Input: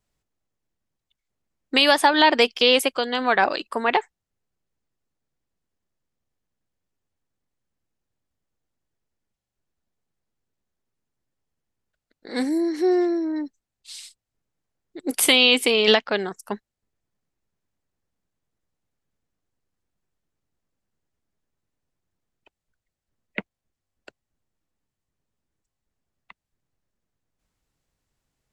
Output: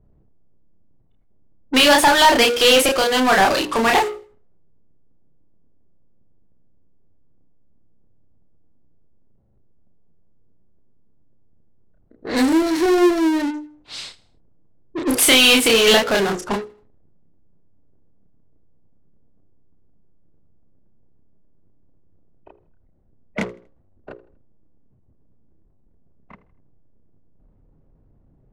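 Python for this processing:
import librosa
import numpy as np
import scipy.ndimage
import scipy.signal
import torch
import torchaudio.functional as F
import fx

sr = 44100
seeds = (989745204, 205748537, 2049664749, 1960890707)

p1 = fx.hum_notches(x, sr, base_hz=60, count=9)
p2 = fx.doubler(p1, sr, ms=31.0, db=-3.5)
p3 = fx.power_curve(p2, sr, exponent=0.5)
p4 = fx.fuzz(p3, sr, gain_db=31.0, gate_db=-33.0)
p5 = p3 + F.gain(torch.from_numpy(p4), -11.0).numpy()
p6 = fx.env_lowpass(p5, sr, base_hz=350.0, full_db=-11.0)
p7 = p6 + fx.echo_feedback(p6, sr, ms=80, feedback_pct=40, wet_db=-20, dry=0)
p8 = fx.upward_expand(p7, sr, threshold_db=-27.0, expansion=1.5)
y = F.gain(torch.from_numpy(p8), -3.5).numpy()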